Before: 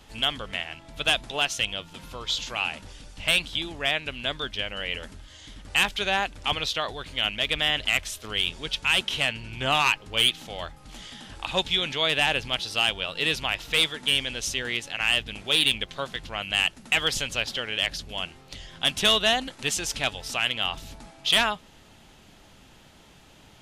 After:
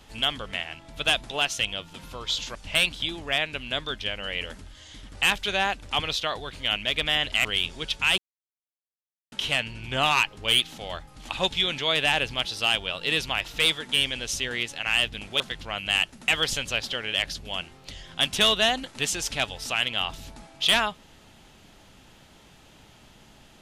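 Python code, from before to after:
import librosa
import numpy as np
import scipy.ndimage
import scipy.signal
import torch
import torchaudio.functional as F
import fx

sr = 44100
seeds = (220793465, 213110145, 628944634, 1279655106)

y = fx.edit(x, sr, fx.cut(start_s=2.55, length_s=0.53),
    fx.cut(start_s=7.98, length_s=0.3),
    fx.insert_silence(at_s=9.01, length_s=1.14),
    fx.cut(start_s=10.98, length_s=0.45),
    fx.cut(start_s=15.54, length_s=0.5), tone=tone)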